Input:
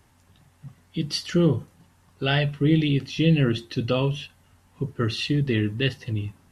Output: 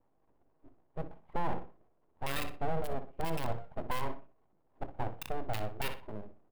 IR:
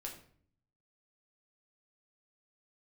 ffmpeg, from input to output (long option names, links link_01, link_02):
-filter_complex "[0:a]asplit=3[link_01][link_02][link_03];[link_01]bandpass=frequency=530:width_type=q:width=8,volume=0dB[link_04];[link_02]bandpass=frequency=1840:width_type=q:width=8,volume=-6dB[link_05];[link_03]bandpass=frequency=2480:width_type=q:width=8,volume=-9dB[link_06];[link_04][link_05][link_06]amix=inputs=3:normalize=0,bandreject=frequency=3200:width=11,acrossover=split=700[link_07][link_08];[link_08]acrusher=bits=3:dc=4:mix=0:aa=0.000001[link_09];[link_07][link_09]amix=inputs=2:normalize=0,aecho=1:1:0.8:0.55,asplit=2[link_10][link_11];[1:a]atrim=start_sample=2205,atrim=end_sample=6174[link_12];[link_11][link_12]afir=irnorm=-1:irlink=0,volume=-14.5dB[link_13];[link_10][link_13]amix=inputs=2:normalize=0,aeval=exprs='abs(val(0))':channel_layout=same,bandreject=frequency=60:width_type=h:width=6,bandreject=frequency=120:width_type=h:width=6,bandreject=frequency=180:width_type=h:width=6,asplit=2[link_14][link_15];[link_15]adelay=61,lowpass=frequency=3400:poles=1,volume=-13dB,asplit=2[link_16][link_17];[link_17]adelay=61,lowpass=frequency=3400:poles=1,volume=0.3,asplit=2[link_18][link_19];[link_19]adelay=61,lowpass=frequency=3400:poles=1,volume=0.3[link_20];[link_14][link_16][link_18][link_20]amix=inputs=4:normalize=0,alimiter=level_in=7dB:limit=-24dB:level=0:latency=1:release=33,volume=-7dB,equalizer=frequency=6100:width_type=o:width=0.9:gain=-9,volume=9.5dB"